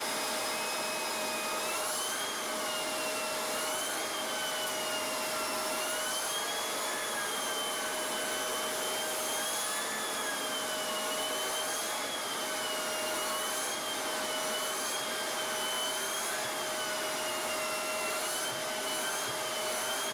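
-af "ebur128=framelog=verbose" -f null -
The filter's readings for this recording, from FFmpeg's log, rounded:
Integrated loudness:
  I:         -32.1 LUFS
  Threshold: -42.1 LUFS
Loudness range:
  LRA:         0.4 LU
  Threshold: -52.1 LUFS
  LRA low:   -32.3 LUFS
  LRA high:  -32.0 LUFS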